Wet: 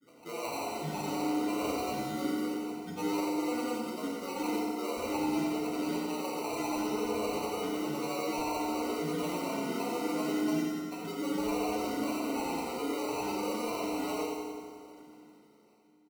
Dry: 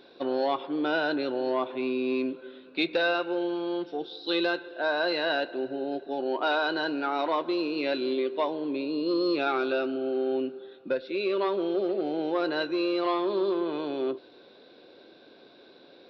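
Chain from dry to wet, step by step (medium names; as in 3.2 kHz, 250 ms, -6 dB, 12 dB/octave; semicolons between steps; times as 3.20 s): fade out at the end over 4.43 s; Chebyshev low-pass 810 Hz, order 3; bass shelf 310 Hz -11.5 dB; de-hum 153.5 Hz, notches 32; reverse; compression 8:1, threshold -46 dBFS, peak gain reduction 19 dB; reverse; granulator, pitch spread up and down by 12 st; sample-and-hold 26×; on a send: feedback delay 89 ms, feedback 55%, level -6 dB; on the sum: FDN reverb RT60 1.8 s, low-frequency decay 1.35×, high-frequency decay 0.8×, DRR -3.5 dB; trim +8 dB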